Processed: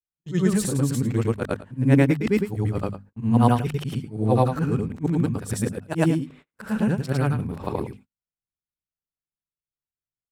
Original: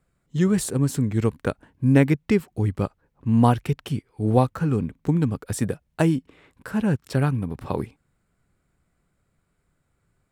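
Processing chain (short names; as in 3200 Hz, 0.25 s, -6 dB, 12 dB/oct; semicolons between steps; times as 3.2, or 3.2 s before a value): short-time reversal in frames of 0.223 s; notches 50/100/150/200/250 Hz; gate -49 dBFS, range -34 dB; gain +3.5 dB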